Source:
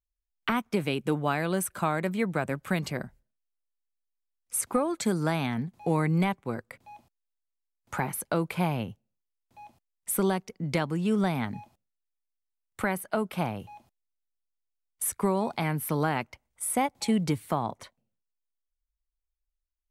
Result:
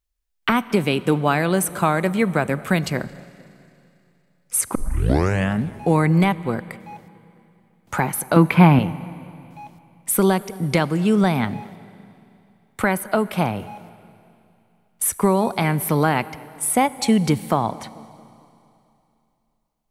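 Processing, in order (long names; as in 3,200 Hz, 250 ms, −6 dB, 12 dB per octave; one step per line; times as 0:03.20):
0:08.36–0:08.79: octave-band graphic EQ 125/250/500/1,000/2,000/8,000 Hz +5/+12/−3/+6/+7/−10 dB
feedback echo with a low-pass in the loop 222 ms, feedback 52%, low-pass 2,000 Hz, level −21.5 dB
0:04.75: tape start 0.90 s
four-comb reverb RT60 2.9 s, combs from 31 ms, DRR 18 dB
level +8.5 dB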